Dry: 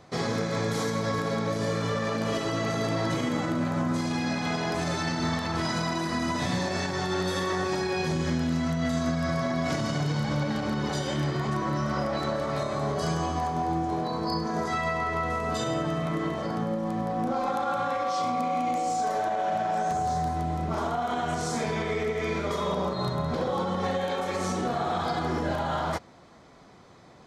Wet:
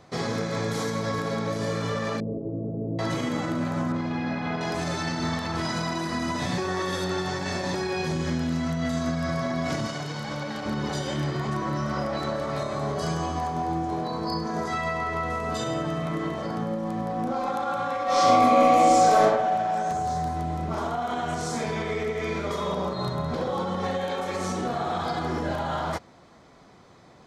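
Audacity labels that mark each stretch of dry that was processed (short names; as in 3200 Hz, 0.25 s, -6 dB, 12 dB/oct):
2.200000	2.990000	inverse Chebyshev band-stop 1800–7700 Hz, stop band 70 dB
3.920000	4.610000	LPF 2600 Hz
6.580000	7.740000	reverse
9.870000	10.660000	low shelf 280 Hz -10 dB
18.050000	19.230000	reverb throw, RT60 1 s, DRR -11 dB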